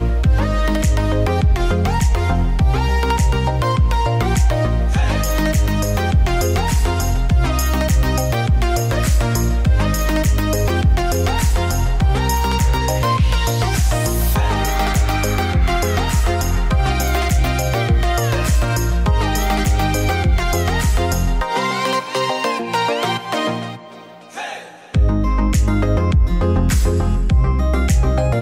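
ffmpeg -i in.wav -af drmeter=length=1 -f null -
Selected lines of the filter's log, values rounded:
Channel 1: DR: 5.3
Overall DR: 5.3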